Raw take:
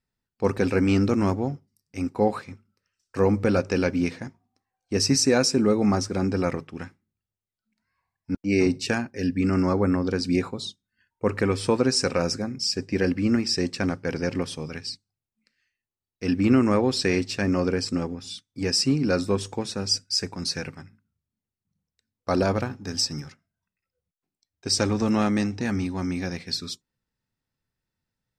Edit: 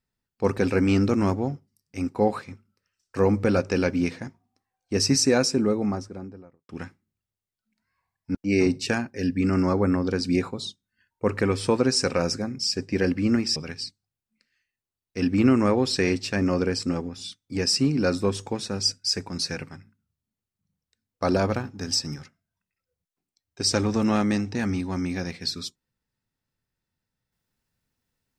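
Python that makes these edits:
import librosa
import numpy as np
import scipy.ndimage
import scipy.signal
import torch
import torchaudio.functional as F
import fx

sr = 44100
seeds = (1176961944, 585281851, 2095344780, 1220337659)

y = fx.studio_fade_out(x, sr, start_s=5.23, length_s=1.46)
y = fx.edit(y, sr, fx.cut(start_s=13.56, length_s=1.06), tone=tone)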